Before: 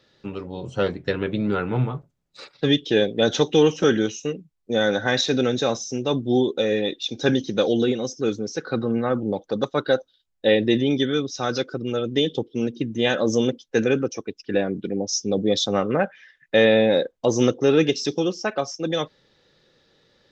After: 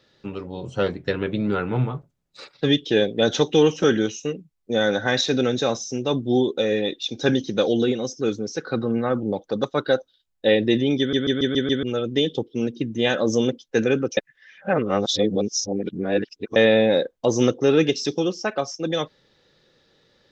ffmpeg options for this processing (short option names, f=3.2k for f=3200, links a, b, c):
-filter_complex "[0:a]asplit=9[a][b][c][d][e][f][g][h][i];[a]atrim=end=11.132[j];[b]atrim=start=10.988:end=11.132[k];[c]atrim=start=10.988:end=11.132[l];[d]atrim=start=10.988:end=11.132[m];[e]atrim=start=10.988:end=11.132[n];[f]atrim=start=10.988:end=11.132[o];[g]atrim=start=11.828:end=14.172[p];[h]atrim=start=14.168:end=16.562,asetpts=PTS-STARTPTS,areverse[q];[i]atrim=start=16.558[r];[j][k]acrossfade=d=0.004:c1=hsin:c2=hsin[s];[s][l]acrossfade=d=0.004:c1=hsin:c2=hsin[t];[t][m]acrossfade=d=0.004:c1=hsin:c2=hsin[u];[u][n]acrossfade=d=0.004:c1=hsin:c2=hsin[v];[v][o]acrossfade=d=0.004:c1=hsin:c2=hsin[w];[w][p]acrossfade=d=0.004:c1=hsin:c2=hsin[x];[x][q]acrossfade=d=0.004:c1=hsin:c2=hsin[y];[y][r]acrossfade=d=0.004:c1=hsin:c2=hsin"